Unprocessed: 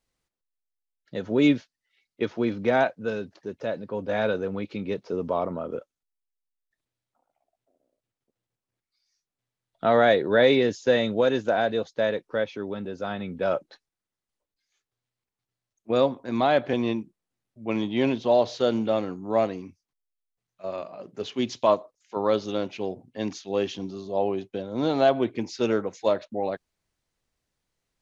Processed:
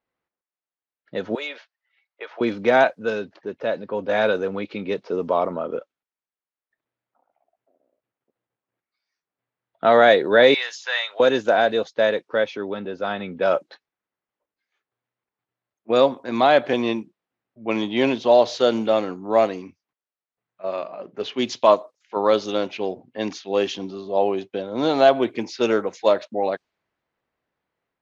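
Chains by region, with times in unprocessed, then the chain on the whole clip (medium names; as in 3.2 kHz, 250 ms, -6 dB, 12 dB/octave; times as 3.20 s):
1.35–2.41 s: high-pass 580 Hz 24 dB/octave + compression 4:1, threshold -34 dBFS
10.54–11.20 s: high-pass 950 Hz 24 dB/octave + upward compressor, threshold -35 dBFS
whole clip: level-controlled noise filter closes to 1.9 kHz, open at -20.5 dBFS; high-pass 370 Hz 6 dB/octave; level rider gain up to 4 dB; trim +3 dB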